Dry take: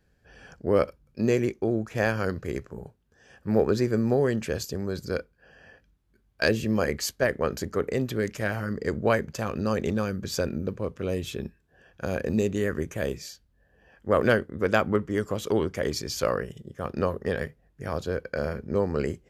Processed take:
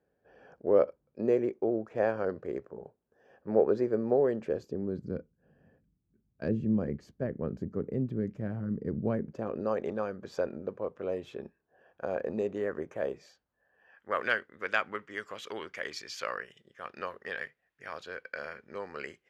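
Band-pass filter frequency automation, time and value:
band-pass filter, Q 1.2
4.35 s 550 Hz
5.17 s 180 Hz
9.09 s 180 Hz
9.75 s 710 Hz
13.20 s 710 Hz
14.30 s 2.1 kHz

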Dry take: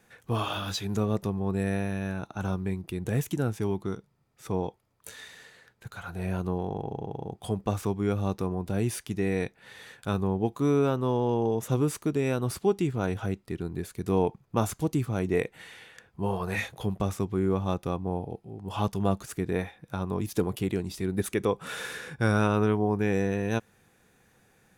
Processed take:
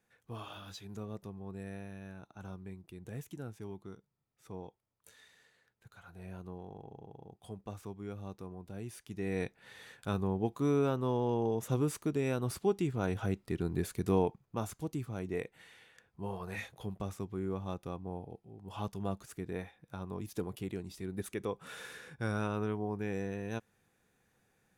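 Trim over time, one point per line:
8.93 s -15.5 dB
9.41 s -5.5 dB
12.89 s -5.5 dB
13.90 s +1 dB
14.56 s -10.5 dB

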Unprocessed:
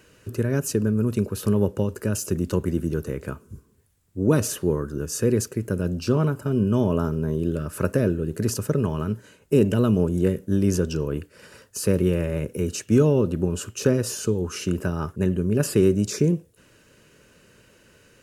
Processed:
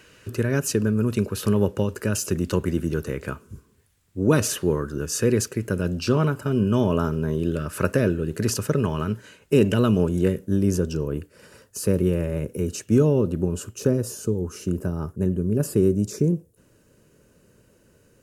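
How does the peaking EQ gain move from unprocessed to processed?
peaking EQ 2.6 kHz 2.7 oct
10.11 s +6 dB
10.64 s -4 dB
13.47 s -4 dB
14.08 s -11.5 dB

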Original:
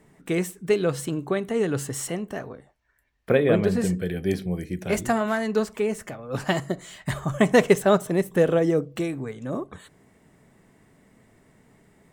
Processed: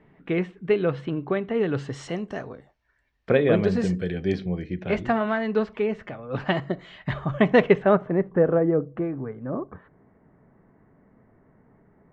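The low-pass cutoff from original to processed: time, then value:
low-pass 24 dB/octave
1.50 s 3.1 kHz
2.19 s 5.8 kHz
4.11 s 5.8 kHz
4.86 s 3.5 kHz
7.59 s 3.5 kHz
8.30 s 1.6 kHz

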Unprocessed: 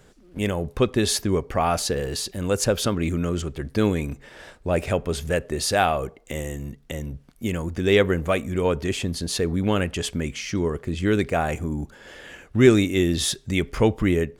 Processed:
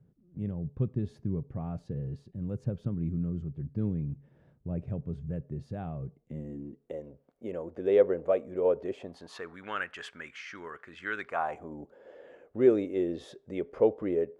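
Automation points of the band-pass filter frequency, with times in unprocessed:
band-pass filter, Q 2.8
6.19 s 140 Hz
7.00 s 530 Hz
8.93 s 530 Hz
9.54 s 1.5 kHz
11.17 s 1.5 kHz
11.82 s 510 Hz

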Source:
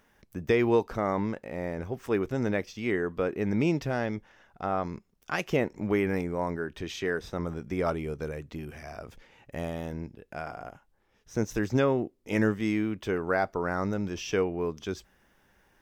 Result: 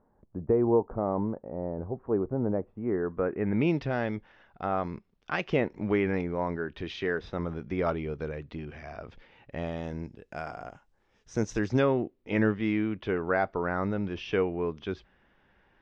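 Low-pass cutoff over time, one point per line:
low-pass 24 dB/octave
2.75 s 1 kHz
3.47 s 2.3 kHz
3.71 s 4.3 kHz
9.55 s 4.3 kHz
10.12 s 7.8 kHz
11.43 s 7.8 kHz
12.06 s 3.7 kHz

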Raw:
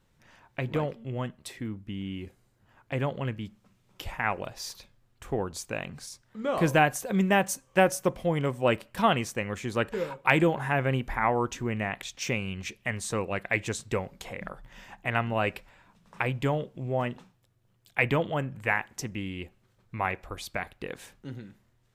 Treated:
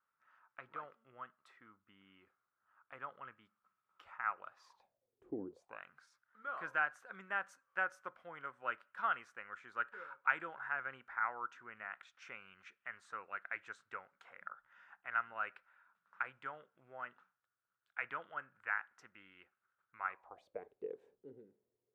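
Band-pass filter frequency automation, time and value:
band-pass filter, Q 7.7
4.57 s 1.3 kHz
5.43 s 260 Hz
5.80 s 1.4 kHz
20.05 s 1.4 kHz
20.61 s 430 Hz

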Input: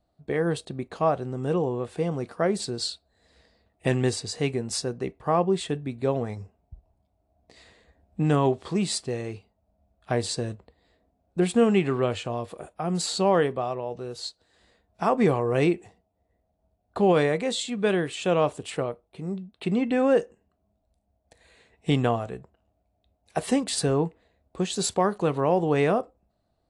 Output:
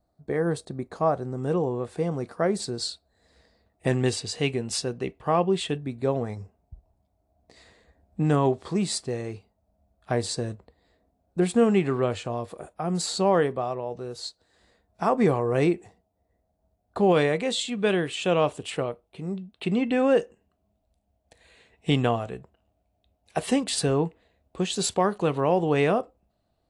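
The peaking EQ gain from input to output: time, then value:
peaking EQ 2.9 kHz 0.62 oct
-12.5 dB
from 1.38 s -5 dB
from 4.06 s +6.5 dB
from 5.78 s -4 dB
from 17.12 s +4 dB

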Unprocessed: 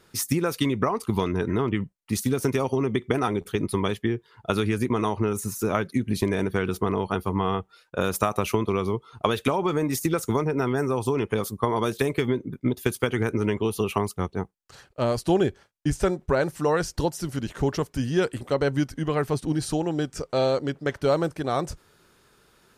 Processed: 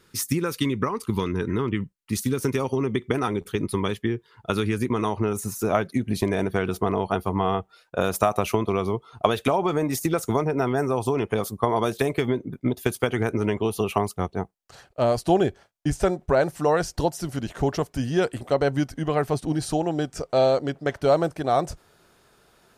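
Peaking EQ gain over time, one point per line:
peaking EQ 690 Hz 0.45 oct
2.24 s -11.5 dB
2.70 s -3 dB
4.92 s -3 dB
5.41 s +8 dB

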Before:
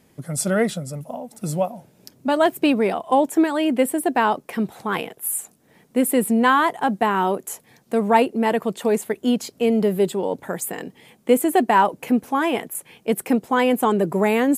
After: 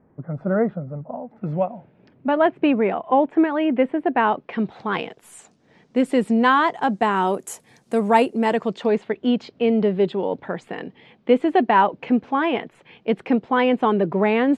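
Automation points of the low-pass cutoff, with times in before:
low-pass 24 dB/octave
0.95 s 1.4 kHz
1.73 s 2.6 kHz
4.07 s 2.6 kHz
5.17 s 5.8 kHz
6.66 s 5.8 kHz
7.36 s 10 kHz
8.33 s 10 kHz
9.00 s 3.8 kHz

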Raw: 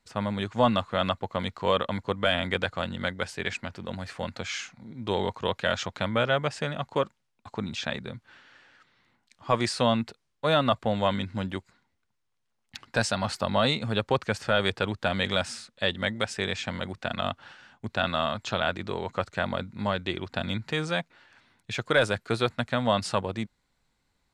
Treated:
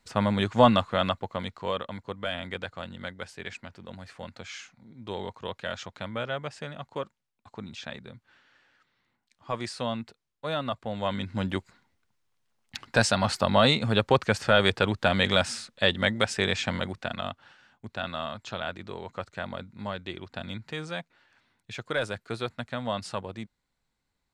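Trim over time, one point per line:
0.59 s +4.5 dB
1.89 s -7.5 dB
10.87 s -7.5 dB
11.52 s +3.5 dB
16.75 s +3.5 dB
17.40 s -6.5 dB

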